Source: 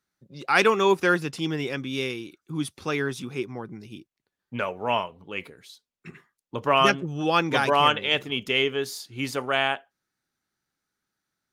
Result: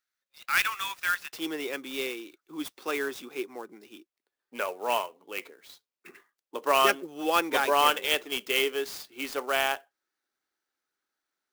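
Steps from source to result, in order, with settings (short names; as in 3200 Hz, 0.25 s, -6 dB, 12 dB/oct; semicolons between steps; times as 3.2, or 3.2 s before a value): HPF 1300 Hz 24 dB/oct, from 1.33 s 310 Hz; clock jitter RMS 0.023 ms; gain -2.5 dB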